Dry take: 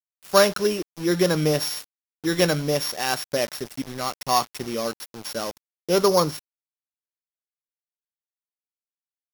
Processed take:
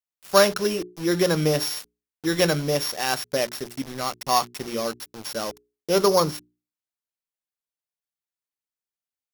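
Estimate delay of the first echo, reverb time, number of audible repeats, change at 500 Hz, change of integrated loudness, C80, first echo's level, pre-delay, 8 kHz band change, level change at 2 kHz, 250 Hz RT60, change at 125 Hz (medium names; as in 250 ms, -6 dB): no echo, no reverb, no echo, -0.5 dB, -0.5 dB, no reverb, no echo, no reverb, 0.0 dB, 0.0 dB, no reverb, -0.5 dB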